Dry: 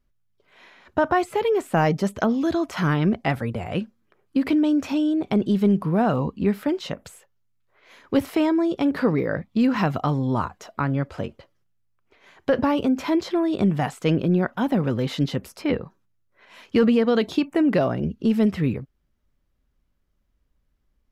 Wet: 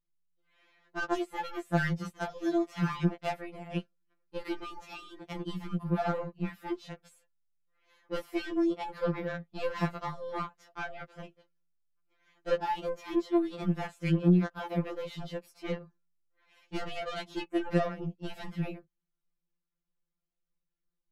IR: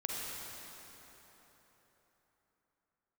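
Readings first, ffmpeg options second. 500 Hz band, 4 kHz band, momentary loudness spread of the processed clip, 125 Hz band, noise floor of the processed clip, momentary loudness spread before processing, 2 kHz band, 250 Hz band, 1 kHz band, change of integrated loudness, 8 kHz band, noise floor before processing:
-10.5 dB, -9.5 dB, 13 LU, -8.0 dB, -85 dBFS, 8 LU, -7.5 dB, -12.0 dB, -9.5 dB, -10.5 dB, n/a, -70 dBFS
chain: -af "aeval=exprs='0.355*(cos(1*acos(clip(val(0)/0.355,-1,1)))-cos(1*PI/2))+0.0355*(cos(2*acos(clip(val(0)/0.355,-1,1)))-cos(2*PI/2))+0.0282*(cos(7*acos(clip(val(0)/0.355,-1,1)))-cos(7*PI/2))':c=same,afftfilt=real='re*2.83*eq(mod(b,8),0)':imag='im*2.83*eq(mod(b,8),0)':win_size=2048:overlap=0.75,volume=-6.5dB"

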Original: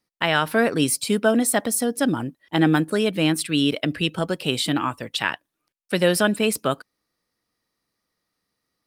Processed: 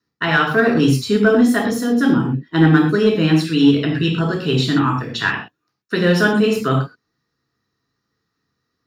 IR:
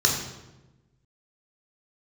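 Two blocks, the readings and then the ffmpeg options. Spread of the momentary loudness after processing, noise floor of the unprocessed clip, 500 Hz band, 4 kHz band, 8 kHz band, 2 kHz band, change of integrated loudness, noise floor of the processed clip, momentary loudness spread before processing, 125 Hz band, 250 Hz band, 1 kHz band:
7 LU, -80 dBFS, +4.5 dB, +1.0 dB, -8.5 dB, +6.0 dB, +5.5 dB, -76 dBFS, 7 LU, +10.0 dB, +7.5 dB, +4.0 dB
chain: -filter_complex "[0:a]equalizer=f=9.2k:w=0.74:g=-13.5[a];[1:a]atrim=start_sample=2205,atrim=end_sample=6174[b];[a][b]afir=irnorm=-1:irlink=0,asplit=2[c][d];[d]asoftclip=type=hard:threshold=-1dB,volume=-11dB[e];[c][e]amix=inputs=2:normalize=0,equalizer=f=580:w=6.7:g=-8.5,volume=-11dB"

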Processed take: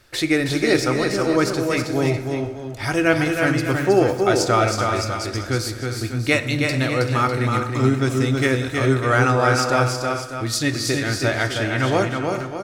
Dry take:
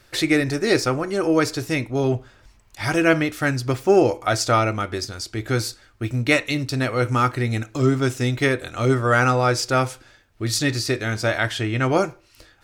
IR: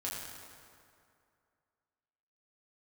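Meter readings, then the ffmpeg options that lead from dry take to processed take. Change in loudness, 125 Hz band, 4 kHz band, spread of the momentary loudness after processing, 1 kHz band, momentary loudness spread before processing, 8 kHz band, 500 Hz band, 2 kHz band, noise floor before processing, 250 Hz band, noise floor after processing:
+1.0 dB, +1.5 dB, +1.5 dB, 7 LU, +1.5 dB, 9 LU, +1.5 dB, +1.5 dB, +1.5 dB, -56 dBFS, +1.5 dB, -32 dBFS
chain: -filter_complex "[0:a]aecho=1:1:320|385|418|600:0.596|0.224|0.141|0.282,asplit=2[a][b];[1:a]atrim=start_sample=2205[c];[b][c]afir=irnorm=-1:irlink=0,volume=-11dB[d];[a][d]amix=inputs=2:normalize=0,volume=-2dB"

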